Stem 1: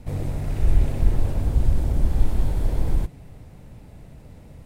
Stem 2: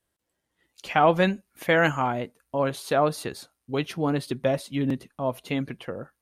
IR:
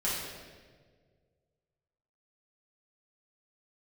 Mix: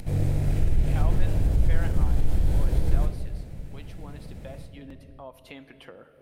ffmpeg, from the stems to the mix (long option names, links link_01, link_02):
-filter_complex "[0:a]equalizer=frequency=970:width_type=o:width=0.82:gain=-6,alimiter=limit=-15.5dB:level=0:latency=1:release=69,volume=-1.5dB,asplit=2[link_01][link_02];[link_02]volume=-10dB[link_03];[1:a]highpass=frequency=440:poles=1,bandreject=frequency=6600:width=14,volume=-19dB,asplit=2[link_04][link_05];[link_05]volume=-19.5dB[link_06];[2:a]atrim=start_sample=2205[link_07];[link_03][link_06]amix=inputs=2:normalize=0[link_08];[link_08][link_07]afir=irnorm=-1:irlink=0[link_09];[link_01][link_04][link_09]amix=inputs=3:normalize=0,acompressor=mode=upward:threshold=-34dB:ratio=2.5"